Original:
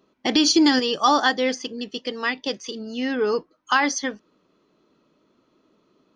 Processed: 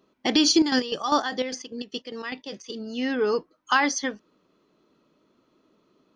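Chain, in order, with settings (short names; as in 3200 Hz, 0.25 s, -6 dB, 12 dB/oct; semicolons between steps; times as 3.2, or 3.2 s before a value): 0.52–2.7 chopper 5 Hz, depth 65%, duty 50%; gain -1.5 dB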